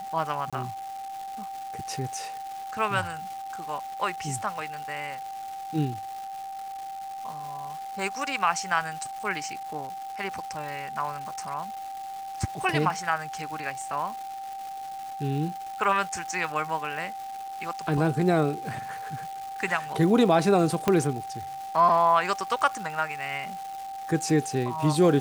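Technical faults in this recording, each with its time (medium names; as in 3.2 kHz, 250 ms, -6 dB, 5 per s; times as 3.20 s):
crackle 550 per s -36 dBFS
whine 780 Hz -34 dBFS
0.50–0.53 s: dropout 26 ms
20.88 s: pop -9 dBFS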